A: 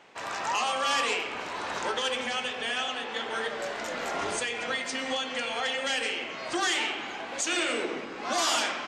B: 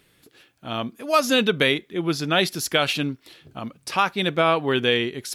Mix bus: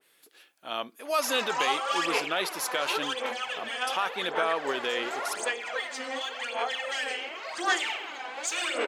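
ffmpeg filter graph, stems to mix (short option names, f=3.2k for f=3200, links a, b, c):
-filter_complex "[0:a]bandreject=f=5.7k:w=23,aphaser=in_gain=1:out_gain=1:delay=4:decay=0.66:speed=0.9:type=sinusoidal,adelay=1050,volume=-2.5dB[a];[1:a]equalizer=f=11k:w=0.99:g=4.5,alimiter=limit=-13dB:level=0:latency=1:release=26,volume=-3dB[b];[a][b]amix=inputs=2:normalize=0,highpass=490,adynamicequalizer=threshold=0.0126:dfrequency=1900:dqfactor=0.7:tfrequency=1900:tqfactor=0.7:attack=5:release=100:ratio=0.375:range=2:mode=cutabove:tftype=highshelf"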